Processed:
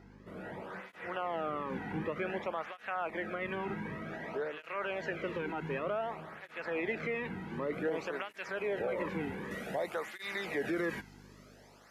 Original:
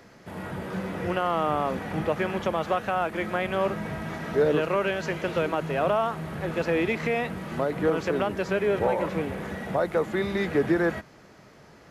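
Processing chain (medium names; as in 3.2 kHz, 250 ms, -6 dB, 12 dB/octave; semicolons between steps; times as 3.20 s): dynamic bell 2.1 kHz, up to +7 dB, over -45 dBFS, Q 1.4; hum 50 Hz, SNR 18 dB; treble shelf 3.9 kHz -11.5 dB, from 7.73 s -4 dB, from 9.51 s +8 dB; peak limiter -18.5 dBFS, peak gain reduction 7.5 dB; cancelling through-zero flanger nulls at 0.54 Hz, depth 1.8 ms; trim -5 dB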